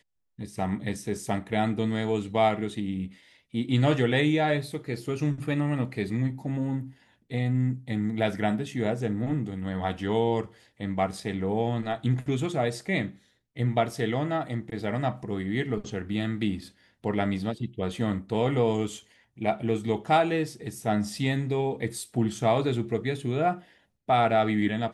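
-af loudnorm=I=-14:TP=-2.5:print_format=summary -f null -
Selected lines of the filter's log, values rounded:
Input Integrated:    -27.9 LUFS
Input True Peak:     -10.8 dBTP
Input LRA:             3.4 LU
Input Threshold:     -38.2 LUFS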